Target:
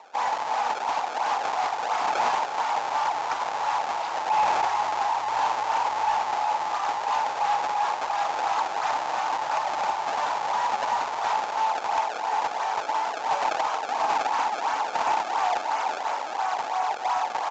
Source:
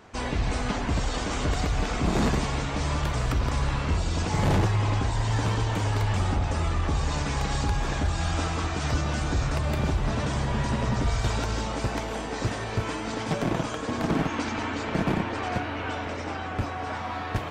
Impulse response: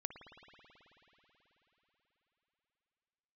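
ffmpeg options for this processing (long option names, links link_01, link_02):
-af "acrusher=samples=26:mix=1:aa=0.000001:lfo=1:lforange=41.6:lforate=2.9,highpass=frequency=850:width_type=q:width=6.1,asoftclip=type=tanh:threshold=-17.5dB,aresample=16000,aresample=44100,volume=1.5dB"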